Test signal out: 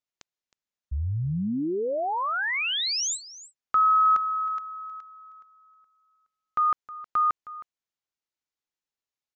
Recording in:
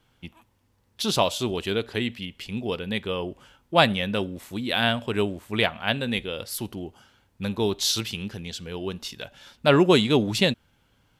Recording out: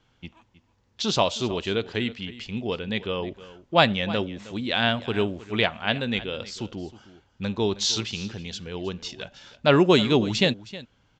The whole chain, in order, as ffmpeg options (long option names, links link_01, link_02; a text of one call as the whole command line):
ffmpeg -i in.wav -filter_complex "[0:a]asplit=2[link_01][link_02];[link_02]aecho=0:1:315:0.141[link_03];[link_01][link_03]amix=inputs=2:normalize=0,aresample=16000,aresample=44100" out.wav